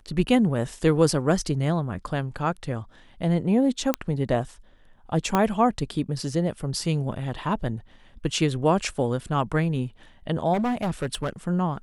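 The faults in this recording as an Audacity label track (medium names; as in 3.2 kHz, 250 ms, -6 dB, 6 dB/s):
3.940000	3.940000	pop -8 dBFS
5.350000	5.350000	pop -8 dBFS
10.530000	11.300000	clipped -22 dBFS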